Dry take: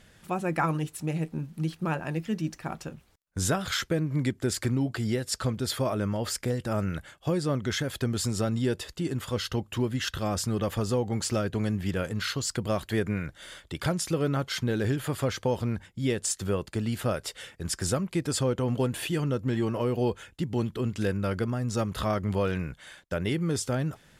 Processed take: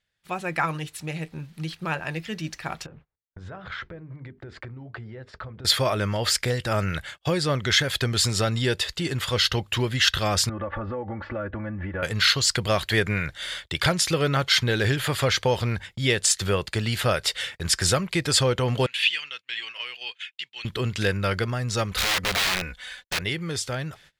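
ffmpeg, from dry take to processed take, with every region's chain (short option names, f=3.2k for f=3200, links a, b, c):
-filter_complex "[0:a]asettb=1/sr,asplit=3[a][b][c];[a]atrim=end=2.864[d];[b]atrim=start=2.86:end=5.65,asetpts=PTS-STARTPTS,afade=t=in:d=0.004:c=qsin,afade=t=out:st=2.786:d=0.004:c=qsin,lowpass=1.2k,acompressor=threshold=-39dB:ratio=6:attack=3.2:release=140:knee=1:detection=peak,bandreject=f=50:t=h:w=6,bandreject=f=100:t=h:w=6,bandreject=f=150:t=h:w=6,bandreject=f=200:t=h:w=6,bandreject=f=250:t=h:w=6,bandreject=f=300:t=h:w=6,bandreject=f=350:t=h:w=6,bandreject=f=400:t=h:w=6,bandreject=f=450:t=h:w=6[e];[c]atrim=start=5.646[f];[d][e]acrossfade=d=0.004:c1=hsin:c2=qsin[g];[g][f]acrossfade=d=0.004:c1=qsin:c2=hsin,asettb=1/sr,asplit=3[h][i][j];[h]atrim=end=10.494[k];[i]atrim=start=10.49:end=12.03,asetpts=PTS-STARTPTS,afade=t=in:d=0.004:c=qsin,afade=t=out:st=1.536:d=0.004:c=qsin,lowpass=f=1.6k:w=0.5412,lowpass=f=1.6k:w=1.3066,aecho=1:1:3.5:0.89,atrim=end_sample=67914,acompressor=threshold=-31dB:ratio=5:attack=3.2:release=140:knee=1:detection=peak[l];[j]atrim=start=12.026[m];[k][l]acrossfade=d=0.004:c1=hsin:c2=qsin[n];[n][m]acrossfade=d=0.004:c1=qsin:c2=hsin,asettb=1/sr,asplit=3[o][p][q];[o]atrim=end=18.864[r];[p]atrim=start=18.86:end=20.65,asetpts=PTS-STARTPTS,afade=t=in:d=0.004:c=qsin,afade=t=out:st=1.786:d=0.004:c=qsin,highpass=f=2.7k:t=q:w=2.4,aemphasis=mode=reproduction:type=riaa[s];[q]atrim=start=20.646[t];[r][s]acrossfade=d=0.004:c1=hsin:c2=qsin[u];[u][t]acrossfade=d=0.004:c1=qsin:c2=hsin,asettb=1/sr,asplit=3[v][w][x];[v]atrim=end=21.914[y];[w]atrim=start=21.91:end=23.22,asetpts=PTS-STARTPTS,afade=t=in:d=0.004:c=qsin,afade=t=out:st=1.306:d=0.004:c=qsin,aecho=1:1:4:0.72,atrim=end_sample=57771,asubboost=boost=2.5:cutoff=90,aeval=exprs='(mod(17.8*val(0)+1,2)-1)/17.8':c=same[z];[x]atrim=start=23.216[aa];[y][z]acrossfade=d=0.004:c1=hsin:c2=qsin[ab];[ab][aa]acrossfade=d=0.004:c1=qsin:c2=hsin,agate=range=-26dB:threshold=-50dB:ratio=16:detection=peak,equalizer=f=250:t=o:w=1:g=-8,equalizer=f=2k:t=o:w=1:g=6,equalizer=f=4k:t=o:w=1:g=8,dynaudnorm=f=340:g=17:m=6dB"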